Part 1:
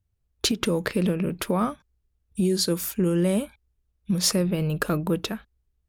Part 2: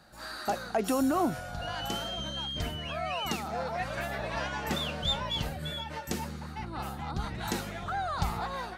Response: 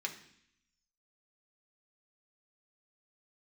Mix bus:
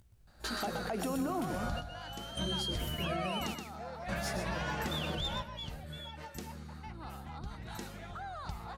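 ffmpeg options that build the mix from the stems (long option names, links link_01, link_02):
-filter_complex "[0:a]acompressor=mode=upward:threshold=-25dB:ratio=2.5,flanger=delay=16.5:depth=5:speed=1.7,volume=-13.5dB,asplit=3[link_01][link_02][link_03];[link_02]volume=-7dB[link_04];[1:a]lowshelf=frequency=81:gain=6.5,acompressor=threshold=-35dB:ratio=2,adelay=150,volume=2.5dB,asplit=2[link_05][link_06];[link_06]volume=-9.5dB[link_07];[link_03]apad=whole_len=393657[link_08];[link_05][link_08]sidechaingate=range=-33dB:threshold=-52dB:ratio=16:detection=peak[link_09];[link_04][link_07]amix=inputs=2:normalize=0,aecho=0:1:123:1[link_10];[link_01][link_09][link_10]amix=inputs=3:normalize=0,alimiter=level_in=1.5dB:limit=-24dB:level=0:latency=1:release=147,volume=-1.5dB"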